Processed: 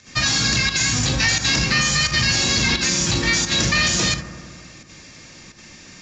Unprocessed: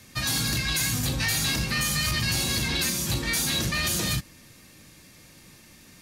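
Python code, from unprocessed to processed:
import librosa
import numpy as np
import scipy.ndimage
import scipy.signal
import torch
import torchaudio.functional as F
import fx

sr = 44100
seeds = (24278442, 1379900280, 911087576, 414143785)

p1 = fx.bass_treble(x, sr, bass_db=-2, treble_db=3)
p2 = fx.over_compress(p1, sr, threshold_db=-27.0, ratio=-1.0)
p3 = p1 + F.gain(torch.from_numpy(p2), -2.5).numpy()
p4 = scipy.signal.sosfilt(scipy.signal.cheby1(6, 3, 7300.0, 'lowpass', fs=sr, output='sos'), p3)
p5 = fx.volume_shaper(p4, sr, bpm=87, per_beat=1, depth_db=-11, release_ms=63.0, shape='slow start')
p6 = fx.echo_bbd(p5, sr, ms=86, stages=1024, feedback_pct=76, wet_db=-12)
y = F.gain(torch.from_numpy(p6), 5.0).numpy()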